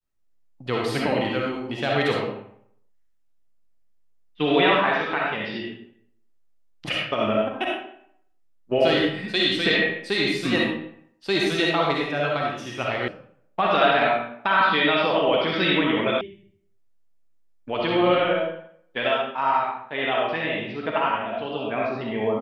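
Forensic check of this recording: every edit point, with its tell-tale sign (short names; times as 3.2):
13.08 sound cut off
16.21 sound cut off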